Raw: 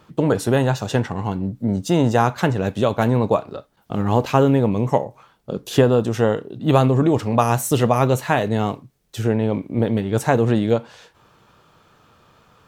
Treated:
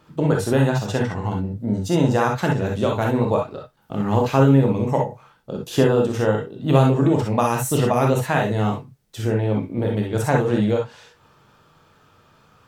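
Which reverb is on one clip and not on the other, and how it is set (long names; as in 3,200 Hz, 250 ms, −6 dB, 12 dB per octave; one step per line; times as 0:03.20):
reverb whose tail is shaped and stops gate 80 ms rising, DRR 0 dB
level −4 dB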